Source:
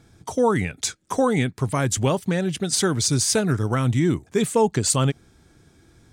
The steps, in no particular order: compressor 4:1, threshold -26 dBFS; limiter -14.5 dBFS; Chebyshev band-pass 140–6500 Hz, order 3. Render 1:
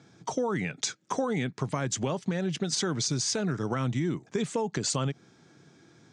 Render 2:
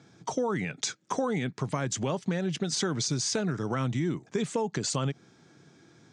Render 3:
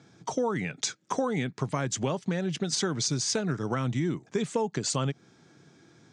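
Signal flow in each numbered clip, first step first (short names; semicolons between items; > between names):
Chebyshev band-pass > limiter > compressor; limiter > Chebyshev band-pass > compressor; Chebyshev band-pass > compressor > limiter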